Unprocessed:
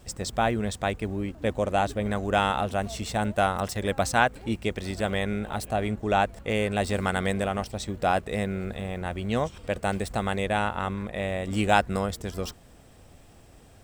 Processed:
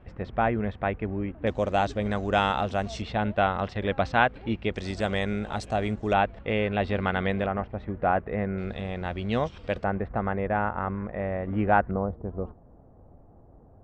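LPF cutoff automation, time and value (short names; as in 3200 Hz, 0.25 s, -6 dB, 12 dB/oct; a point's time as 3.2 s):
LPF 24 dB/oct
2400 Hz
from 1.47 s 6100 Hz
from 3.02 s 3600 Hz
from 4.74 s 6800 Hz
from 6.13 s 3400 Hz
from 7.46 s 2000 Hz
from 8.58 s 4900 Hz
from 9.84 s 1800 Hz
from 11.91 s 1000 Hz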